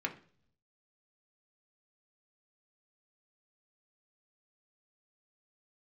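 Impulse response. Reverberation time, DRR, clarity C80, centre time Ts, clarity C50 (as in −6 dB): 0.50 s, 1.5 dB, 19.0 dB, 9 ms, 14.0 dB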